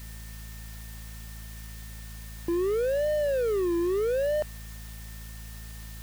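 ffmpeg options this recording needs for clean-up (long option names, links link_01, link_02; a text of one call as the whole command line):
ffmpeg -i in.wav -af "adeclick=threshold=4,bandreject=frequency=54.8:width_type=h:width=4,bandreject=frequency=109.6:width_type=h:width=4,bandreject=frequency=164.4:width_type=h:width=4,bandreject=frequency=219.2:width_type=h:width=4,bandreject=frequency=1800:width=30,afftdn=noise_reduction=30:noise_floor=-41" out.wav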